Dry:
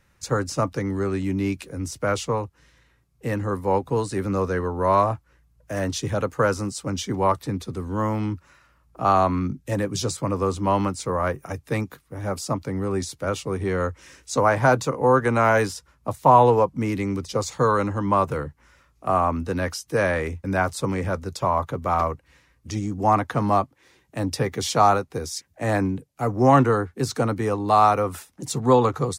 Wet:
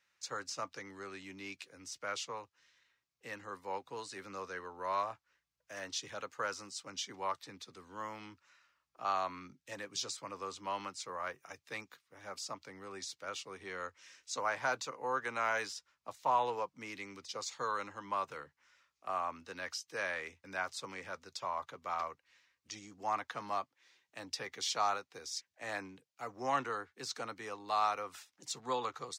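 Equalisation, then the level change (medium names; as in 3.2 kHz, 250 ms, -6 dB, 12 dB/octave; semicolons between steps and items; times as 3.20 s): distance through air 180 m; differentiator; treble shelf 10 kHz +6.5 dB; +3.0 dB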